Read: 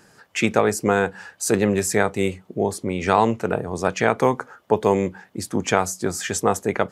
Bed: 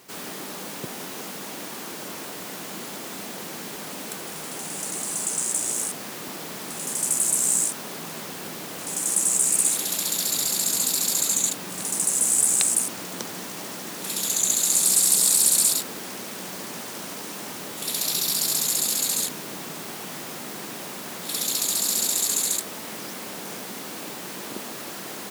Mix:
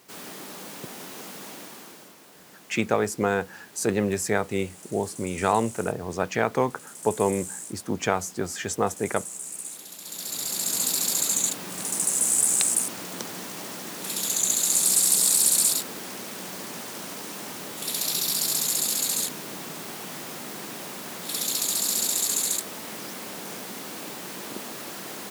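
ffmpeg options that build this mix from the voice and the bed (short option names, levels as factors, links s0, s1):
-filter_complex "[0:a]adelay=2350,volume=0.562[s0];[1:a]volume=2.99,afade=t=out:st=1.47:d=0.68:silence=0.281838,afade=t=in:st=10:d=0.86:silence=0.199526[s1];[s0][s1]amix=inputs=2:normalize=0"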